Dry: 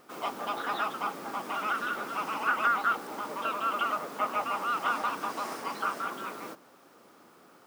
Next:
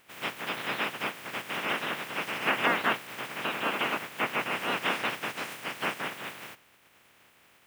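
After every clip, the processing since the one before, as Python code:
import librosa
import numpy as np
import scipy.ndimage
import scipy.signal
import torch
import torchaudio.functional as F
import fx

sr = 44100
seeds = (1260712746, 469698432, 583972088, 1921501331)

y = fx.spec_clip(x, sr, under_db=26)
y = fx.high_shelf_res(y, sr, hz=3500.0, db=-8.0, q=1.5)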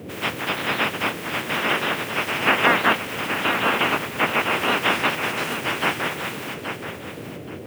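y = fx.dmg_noise_band(x, sr, seeds[0], low_hz=88.0, high_hz=540.0, level_db=-45.0)
y = fx.echo_feedback(y, sr, ms=826, feedback_pct=23, wet_db=-8.5)
y = F.gain(torch.from_numpy(y), 8.5).numpy()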